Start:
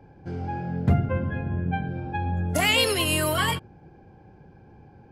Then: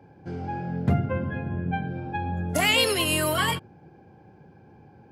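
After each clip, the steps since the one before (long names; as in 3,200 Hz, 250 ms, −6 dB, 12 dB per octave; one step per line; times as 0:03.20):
high-pass filter 100 Hz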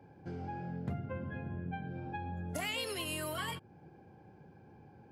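downward compressor 2.5 to 1, threshold −34 dBFS, peak gain reduction 11.5 dB
level −5.5 dB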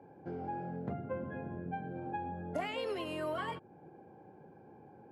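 resonant band-pass 540 Hz, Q 0.69
level +5 dB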